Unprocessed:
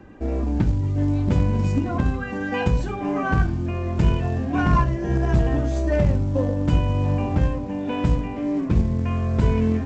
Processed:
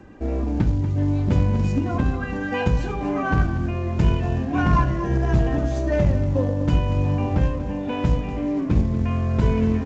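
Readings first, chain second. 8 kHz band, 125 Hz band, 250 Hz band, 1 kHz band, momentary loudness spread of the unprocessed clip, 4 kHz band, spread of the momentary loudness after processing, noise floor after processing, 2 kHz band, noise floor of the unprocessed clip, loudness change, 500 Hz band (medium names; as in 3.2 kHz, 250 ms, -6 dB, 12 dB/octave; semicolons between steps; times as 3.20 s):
no reading, 0.0 dB, 0.0 dB, 0.0 dB, 5 LU, +0.5 dB, 5 LU, -27 dBFS, +0.5 dB, -29 dBFS, 0.0 dB, +0.5 dB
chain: on a send: delay 238 ms -12 dB; on the sum: G.722 64 kbps 16 kHz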